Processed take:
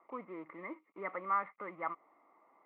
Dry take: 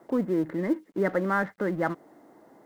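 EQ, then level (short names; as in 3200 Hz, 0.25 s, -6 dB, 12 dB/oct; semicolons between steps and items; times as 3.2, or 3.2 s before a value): double band-pass 1600 Hz, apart 0.9 oct; air absorption 480 m; +5.0 dB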